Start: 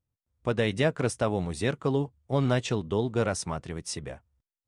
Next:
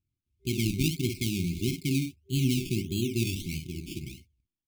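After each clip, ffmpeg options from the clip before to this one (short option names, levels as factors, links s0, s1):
-af "aecho=1:1:52|63:0.447|0.211,acrusher=samples=17:mix=1:aa=0.000001:lfo=1:lforange=10.2:lforate=1.6,afftfilt=real='re*(1-between(b*sr/4096,390,2100))':imag='im*(1-between(b*sr/4096,390,2100))':win_size=4096:overlap=0.75"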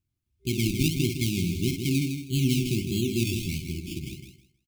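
-af "aecho=1:1:159|318|477:0.447|0.0938|0.0197,volume=1.26"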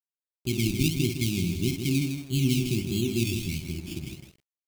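-af "aeval=exprs='sgn(val(0))*max(abs(val(0))-0.00251,0)':c=same"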